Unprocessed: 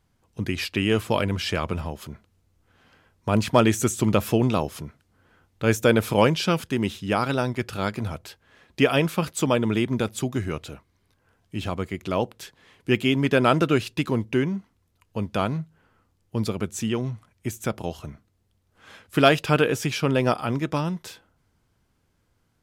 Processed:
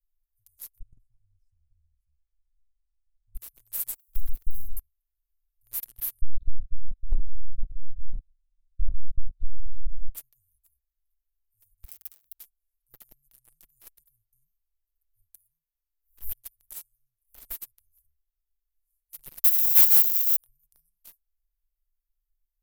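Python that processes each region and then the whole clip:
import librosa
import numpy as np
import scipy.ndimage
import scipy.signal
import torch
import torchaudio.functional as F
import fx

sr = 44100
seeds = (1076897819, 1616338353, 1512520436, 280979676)

y = fx.chain(x, sr, fx.spacing_loss(db_at_10k=35),
    fx.comb(ms=1.2, depth=0.79), at=(0.79, 3.35))
y = fx.chain(y, sr, fx.median_filter(points=41),
    fx.leveller(passes=2),
    fx.dispersion(late='lows', ms=134.0, hz=2800.0), at=(3.94, 4.77))
y = fx.chain(y, sr, fx.highpass(hz=42.0, slope=6),
    fx.lpc_vocoder(seeds[0], excitation='pitch_kept', order=10), at=(6.21, 10.15))
y = fx.chain(y, sr, fx.dead_time(dead_ms=0.14),
    fx.over_compress(threshold_db=-35.0, ratio=-1.0),
    fx.highpass(hz=70.0, slope=12), at=(11.83, 12.34))
y = fx.chain(y, sr, fx.low_shelf(hz=380.0, db=-9.5),
    fx.pre_swell(db_per_s=99.0), at=(15.34, 17.5))
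y = fx.chain(y, sr, fx.crossing_spikes(level_db=-22.0),
    fx.differentiator(), at=(19.44, 20.36))
y = scipy.signal.sosfilt(scipy.signal.cheby2(4, 80, [190.0, 3200.0], 'bandstop', fs=sr, output='sos'), y)
y = y + 0.63 * np.pad(y, (int(6.0 * sr / 1000.0), 0))[:len(y)]
y = fx.leveller(y, sr, passes=3)
y = F.gain(torch.from_numpy(y), 3.0).numpy()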